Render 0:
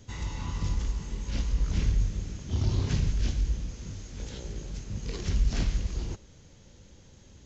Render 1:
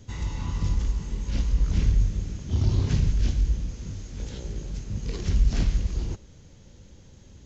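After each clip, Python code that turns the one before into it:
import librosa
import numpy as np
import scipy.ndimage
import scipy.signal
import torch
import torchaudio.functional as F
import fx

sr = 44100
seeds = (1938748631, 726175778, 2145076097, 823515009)

y = fx.low_shelf(x, sr, hz=380.0, db=4.5)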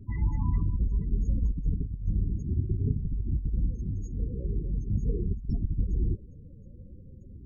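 y = fx.over_compress(x, sr, threshold_db=-25.0, ratio=-0.5)
y = fx.spec_topn(y, sr, count=16)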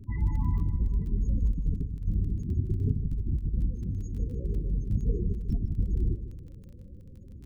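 y = fx.dmg_crackle(x, sr, seeds[0], per_s=12.0, level_db=-41.0)
y = fx.echo_feedback(y, sr, ms=154, feedback_pct=50, wet_db=-13.0)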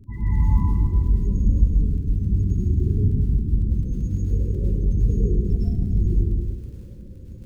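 y = fx.rev_plate(x, sr, seeds[1], rt60_s=1.3, hf_ratio=0.9, predelay_ms=90, drr_db=-8.0)
y = y * 10.0 ** (-1.0 / 20.0)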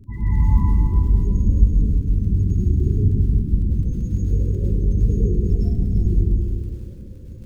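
y = x + 10.0 ** (-9.5 / 20.0) * np.pad(x, (int(340 * sr / 1000.0), 0))[:len(x)]
y = y * 10.0 ** (2.0 / 20.0)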